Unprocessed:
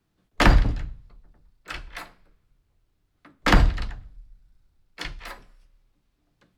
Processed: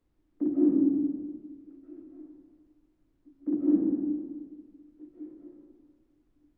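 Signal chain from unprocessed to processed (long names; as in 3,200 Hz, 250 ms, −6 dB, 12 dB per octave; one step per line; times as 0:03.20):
flat-topped band-pass 300 Hz, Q 3.8
comb and all-pass reverb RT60 1.7 s, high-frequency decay 0.45×, pre-delay 110 ms, DRR −8 dB
background noise brown −71 dBFS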